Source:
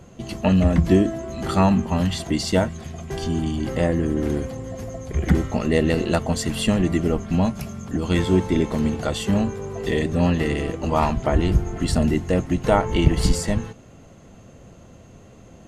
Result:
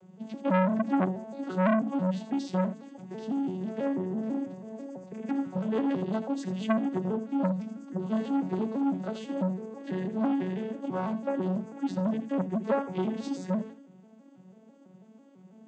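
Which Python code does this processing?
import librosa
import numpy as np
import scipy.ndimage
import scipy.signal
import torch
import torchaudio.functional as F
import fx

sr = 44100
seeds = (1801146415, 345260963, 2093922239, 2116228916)

y = fx.vocoder_arp(x, sr, chord='minor triad', root=54, every_ms=165)
y = y + 10.0 ** (-12.0 / 20.0) * np.pad(y, (int(80 * sr / 1000.0), 0))[:len(y)]
y = fx.transformer_sat(y, sr, knee_hz=900.0)
y = F.gain(torch.from_numpy(y), -4.5).numpy()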